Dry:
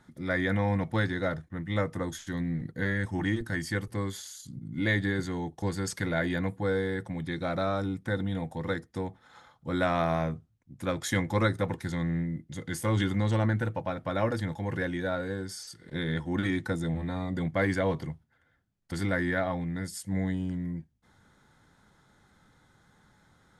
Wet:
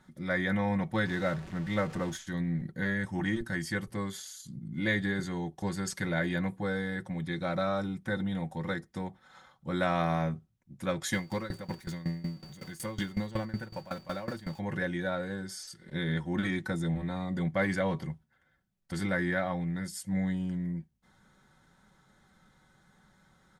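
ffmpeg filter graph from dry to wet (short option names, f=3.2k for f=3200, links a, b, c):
-filter_complex "[0:a]asettb=1/sr,asplit=3[a][b][c];[a]atrim=end=1.064[d];[b]atrim=start=1.06:end=2.17,asetpts=PTS-STARTPTS,afade=t=in:d=0.004:c=qsin,afade=t=out:st=1.106:d=0.004:c=qsin,aeval=exprs='val(0)+0.5*0.0126*sgn(val(0))':c=same,adynamicsmooth=sensitivity=6:basefreq=7.4k[e];[c]atrim=start=2.166[f];[d][e]acrossfade=d=0.004:c1=hsin:c2=qsin[g];[g][f]acrossfade=d=0.004:c1=qsin:c2=hsin,asettb=1/sr,asplit=3[h][i][j];[h]atrim=end=11.134[k];[i]atrim=start=11.13:end=14.59,asetpts=PTS-STARTPTS,afade=t=in:d=0.004:c=qsin,afade=t=out:st=3.456:d=0.004:c=qsin,aeval=exprs='val(0)+0.5*0.0119*sgn(val(0))':c=same,aeval=exprs='val(0)+0.00501*sin(2*PI*4600*n/s)':c=same,aeval=exprs='val(0)*pow(10,-19*if(lt(mod(5.4*n/s,1),2*abs(5.4)/1000),1-mod(5.4*n/s,1)/(2*abs(5.4)/1000),(mod(5.4*n/s,1)-2*abs(5.4)/1000)/(1-2*abs(5.4)/1000))/20)':c=same[l];[j]atrim=start=14.586[m];[k][l]acrossfade=d=0.004:c1=hsin:c2=qsin[n];[n][m]acrossfade=d=0.004:c1=qsin:c2=hsin,bandreject=f=380:w=12,aecho=1:1:5.3:0.48,volume=-2dB"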